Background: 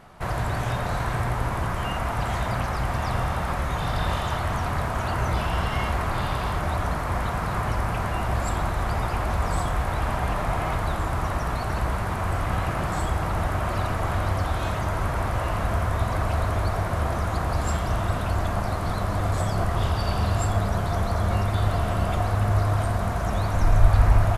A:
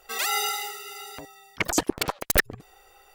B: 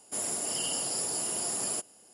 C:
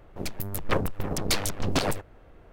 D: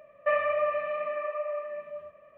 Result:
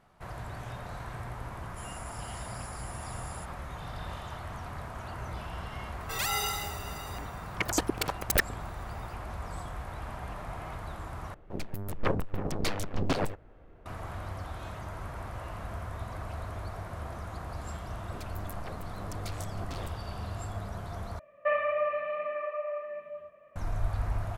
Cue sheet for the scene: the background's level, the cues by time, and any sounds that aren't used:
background -14 dB
1.64 add B -17 dB
6 add A -5 dB
11.34 replace with C -2.5 dB + high shelf 3500 Hz -10.5 dB
17.95 add C -7 dB + compressor, threshold -32 dBFS
21.19 replace with D -2 dB

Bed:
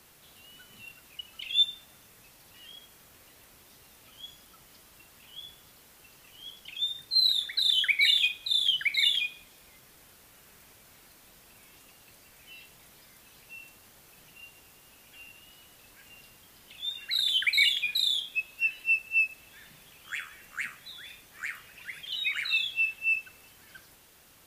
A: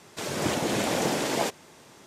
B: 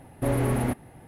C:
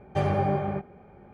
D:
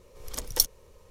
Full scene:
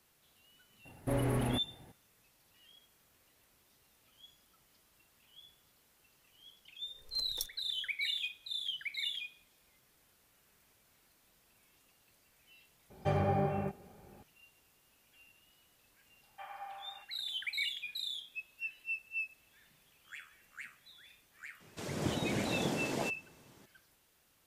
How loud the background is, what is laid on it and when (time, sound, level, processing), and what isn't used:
bed -13 dB
0.85 add B -7.5 dB
6.81 add D -17.5 dB
12.9 add C -6 dB
16.23 add C -13.5 dB + elliptic band-pass 830–3100 Hz, stop band 50 dB
21.6 add A -12 dB + low shelf 260 Hz +11.5 dB

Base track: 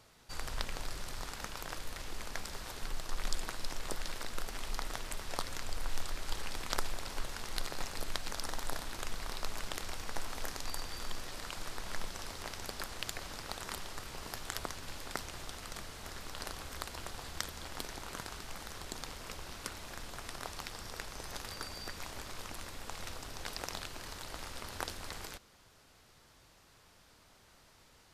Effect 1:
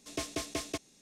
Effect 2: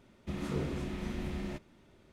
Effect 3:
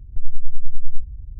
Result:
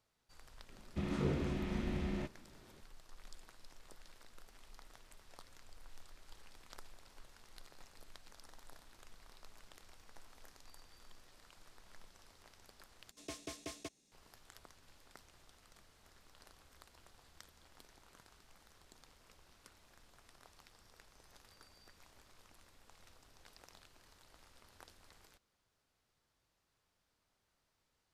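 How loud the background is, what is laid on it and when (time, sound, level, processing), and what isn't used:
base track -19.5 dB
0.69 add 2 -0.5 dB + air absorption 50 m
13.11 replace with 1 -10.5 dB
not used: 3

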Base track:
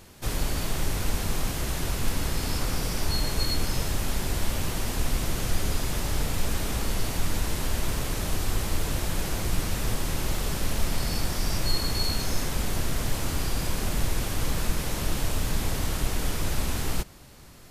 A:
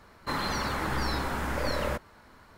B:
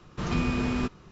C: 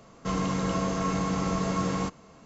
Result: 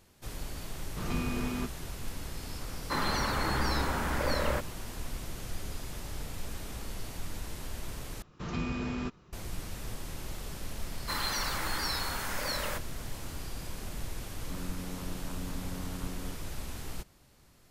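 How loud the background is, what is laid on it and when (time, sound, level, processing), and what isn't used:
base track -12 dB
0.79 add B -6.5 dB
2.63 add A -0.5 dB
8.22 replace with B -7 dB
10.81 add A -5 dB + tilt +3.5 dB/oct
14.24 add C -13.5 dB + vocoder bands 8, saw 90.5 Hz

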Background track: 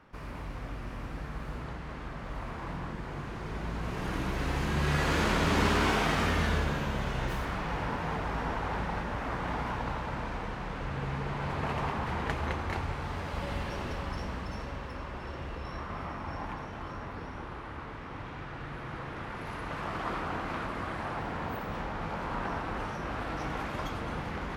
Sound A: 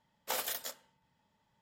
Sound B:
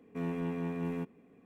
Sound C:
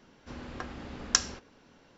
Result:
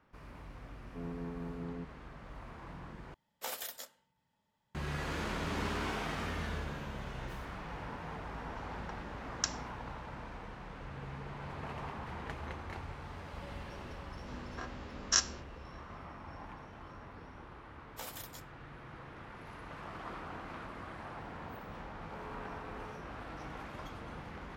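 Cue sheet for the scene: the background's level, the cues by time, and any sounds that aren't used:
background track -10 dB
0.8 add B -7 dB + LPF 1300 Hz
3.14 replace with A -5 dB
8.29 add C -9.5 dB
14.01 add C -9 dB + spectral dilation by 60 ms
17.69 add A -10 dB
21.96 add B -10 dB + HPF 390 Hz 24 dB/oct

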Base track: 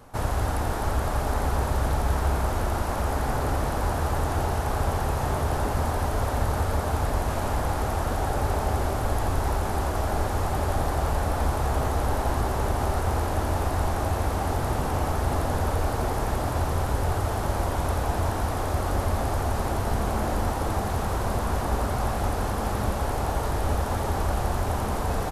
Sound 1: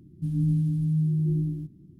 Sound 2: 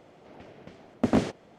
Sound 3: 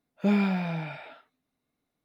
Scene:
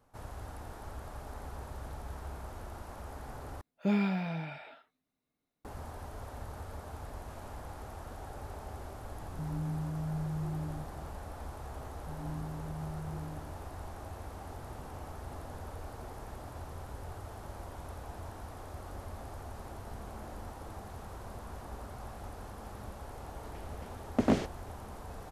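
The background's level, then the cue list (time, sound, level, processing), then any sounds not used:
base track -18.5 dB
3.61 replace with 3 -5 dB
9.17 add 1 -2 dB + compressor 2:1, threshold -40 dBFS
11.85 add 1 -11.5 dB + HPF 260 Hz 6 dB/oct
23.15 add 2 -3.5 dB

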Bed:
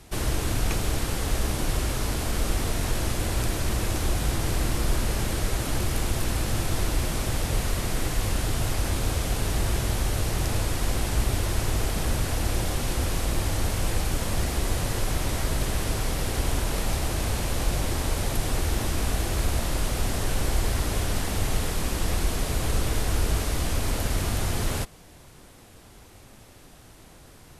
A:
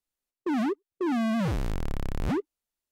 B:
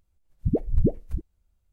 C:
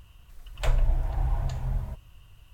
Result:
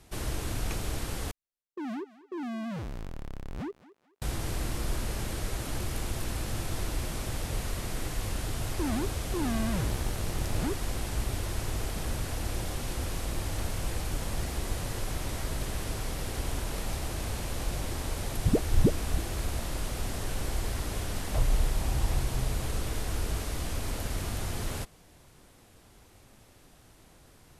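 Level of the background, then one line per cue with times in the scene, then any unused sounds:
bed -7 dB
1.31 replace with A -9 dB + thinning echo 0.217 s, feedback 35%, high-pass 360 Hz, level -16 dB
8.33 add A -5.5 dB
12.95 add C -14.5 dB
18 add B -1.5 dB
20.71 add C -2.5 dB + LPF 1100 Hz

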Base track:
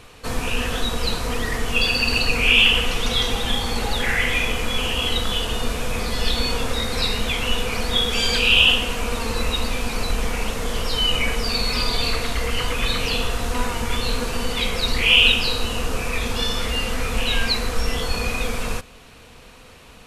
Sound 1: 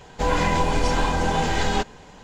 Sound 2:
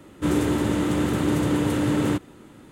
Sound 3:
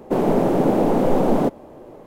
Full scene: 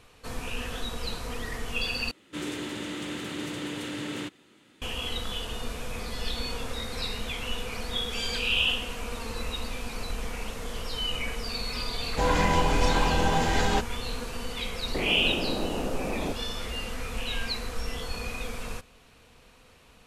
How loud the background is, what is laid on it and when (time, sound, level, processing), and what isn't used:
base track -10.5 dB
2.11 replace with 2 -12 dB + weighting filter D
11.98 add 1 -2.5 dB
14.84 add 3 -7.5 dB + compressor, threshold -20 dBFS

